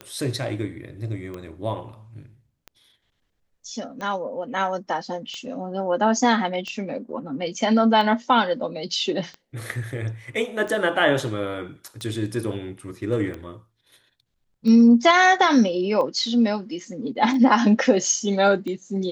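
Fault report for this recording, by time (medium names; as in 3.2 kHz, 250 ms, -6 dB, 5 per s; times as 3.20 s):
tick 45 rpm -21 dBFS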